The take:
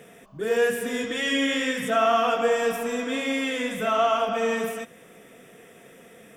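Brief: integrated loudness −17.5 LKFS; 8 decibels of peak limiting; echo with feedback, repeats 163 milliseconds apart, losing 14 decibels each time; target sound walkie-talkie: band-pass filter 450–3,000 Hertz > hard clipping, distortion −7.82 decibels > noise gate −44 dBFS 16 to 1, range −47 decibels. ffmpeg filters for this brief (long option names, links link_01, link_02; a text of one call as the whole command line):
ffmpeg -i in.wav -af "alimiter=limit=-17.5dB:level=0:latency=1,highpass=450,lowpass=3000,aecho=1:1:163|326:0.2|0.0399,asoftclip=type=hard:threshold=-30dB,agate=range=-47dB:threshold=-44dB:ratio=16,volume=15dB" out.wav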